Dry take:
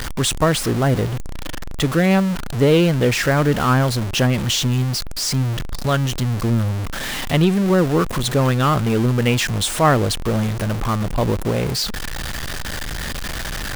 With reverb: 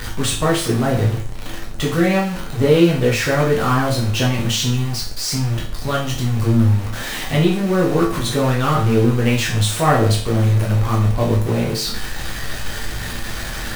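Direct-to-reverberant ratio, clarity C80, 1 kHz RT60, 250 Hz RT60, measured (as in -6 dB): -4.5 dB, 11.0 dB, 0.45 s, 0.45 s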